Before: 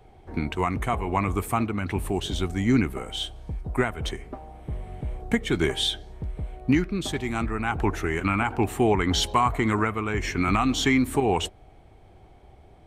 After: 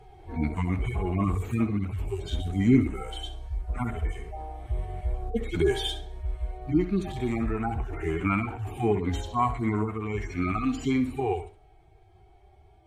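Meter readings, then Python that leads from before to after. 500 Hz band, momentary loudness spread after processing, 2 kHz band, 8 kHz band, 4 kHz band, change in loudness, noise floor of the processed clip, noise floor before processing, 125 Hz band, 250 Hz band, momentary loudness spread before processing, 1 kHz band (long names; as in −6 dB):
−3.0 dB, 10 LU, −8.5 dB, −12.5 dB, −9.5 dB, −3.0 dB, −57 dBFS, −52 dBFS, −0.5 dB, −2.0 dB, 13 LU, −5.5 dB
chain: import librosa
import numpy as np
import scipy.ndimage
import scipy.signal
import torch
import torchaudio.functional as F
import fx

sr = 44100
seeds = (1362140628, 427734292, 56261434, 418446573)

y = fx.hpss_only(x, sr, part='harmonic')
y = fx.rider(y, sr, range_db=4, speed_s=2.0)
y = fx.room_flutter(y, sr, wall_m=11.4, rt60_s=0.32)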